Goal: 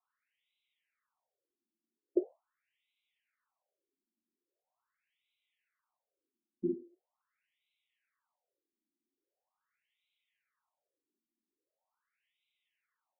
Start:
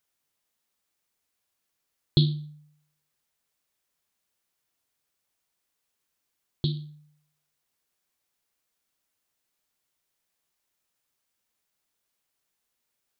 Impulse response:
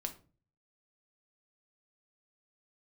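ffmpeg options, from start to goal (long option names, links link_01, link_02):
-filter_complex "[0:a]afreqshift=13[link_01];[1:a]atrim=start_sample=2205[link_02];[link_01][link_02]afir=irnorm=-1:irlink=0,afftfilt=real='re*between(b*sr/1024,260*pow(2900/260,0.5+0.5*sin(2*PI*0.42*pts/sr))/1.41,260*pow(2900/260,0.5+0.5*sin(2*PI*0.42*pts/sr))*1.41)':imag='im*between(b*sr/1024,260*pow(2900/260,0.5+0.5*sin(2*PI*0.42*pts/sr))/1.41,260*pow(2900/260,0.5+0.5*sin(2*PI*0.42*pts/sr))*1.41)':win_size=1024:overlap=0.75,volume=5.5dB"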